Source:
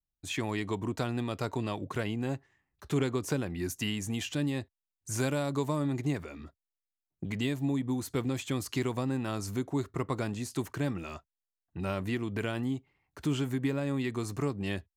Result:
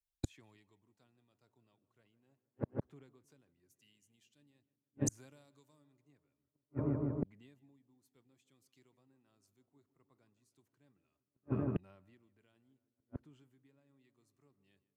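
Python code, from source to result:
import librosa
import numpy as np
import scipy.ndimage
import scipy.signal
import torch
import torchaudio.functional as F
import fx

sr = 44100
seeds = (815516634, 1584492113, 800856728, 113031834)

y = fx.echo_filtered(x, sr, ms=157, feedback_pct=81, hz=2000.0, wet_db=-14.0)
y = fx.gate_flip(y, sr, shuts_db=-35.0, range_db=-41)
y = fx.band_widen(y, sr, depth_pct=70)
y = y * librosa.db_to_amplitude(7.5)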